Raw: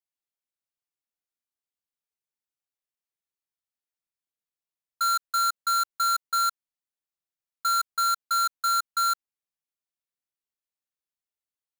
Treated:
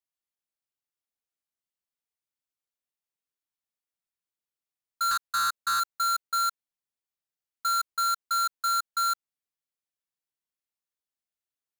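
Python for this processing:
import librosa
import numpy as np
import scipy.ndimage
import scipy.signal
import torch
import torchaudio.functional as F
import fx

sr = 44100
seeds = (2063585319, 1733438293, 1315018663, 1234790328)

y = fx.doppler_dist(x, sr, depth_ms=0.44, at=(5.11, 5.8))
y = y * librosa.db_to_amplitude(-2.0)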